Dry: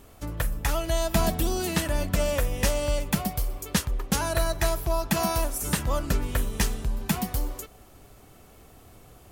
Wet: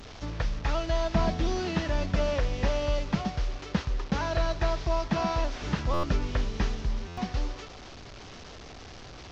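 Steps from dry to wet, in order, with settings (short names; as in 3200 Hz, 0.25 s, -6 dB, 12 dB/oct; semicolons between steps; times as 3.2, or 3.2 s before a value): delta modulation 32 kbps, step -37 dBFS; stuck buffer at 5.93/7.07, samples 512, times 8; gain -1.5 dB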